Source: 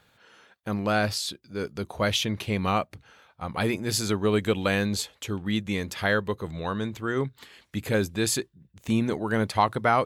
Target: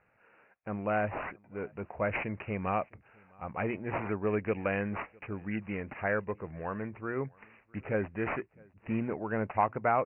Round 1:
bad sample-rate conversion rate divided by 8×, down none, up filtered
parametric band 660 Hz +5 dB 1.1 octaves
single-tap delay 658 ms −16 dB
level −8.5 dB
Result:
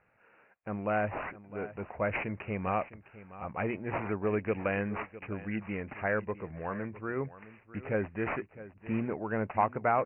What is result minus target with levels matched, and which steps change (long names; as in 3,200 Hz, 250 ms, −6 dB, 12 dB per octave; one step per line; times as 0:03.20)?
echo-to-direct +11.5 dB
change: single-tap delay 658 ms −27.5 dB